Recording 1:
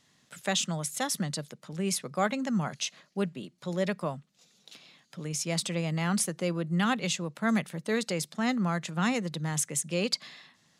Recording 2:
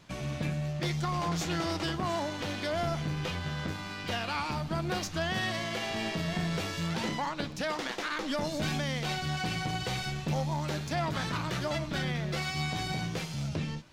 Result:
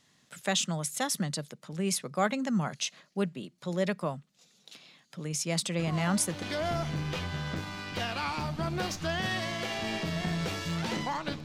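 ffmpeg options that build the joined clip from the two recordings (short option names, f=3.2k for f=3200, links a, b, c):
-filter_complex "[1:a]asplit=2[a][b];[0:a]apad=whole_dur=11.44,atrim=end=11.44,atrim=end=6.422[c];[b]atrim=start=2.538:end=7.56[d];[a]atrim=start=1.91:end=2.54,asetpts=PTS-STARTPTS,volume=-7.5dB,afade=t=in:d=0.004:c=hsin,afade=t=out:st=0.626:d=0.004:c=hsin,adelay=5790[e];[c][d]acrossfade=d=0.004:c1=hsin:c2=hsin[f];[f][e]amix=inputs=2:normalize=0"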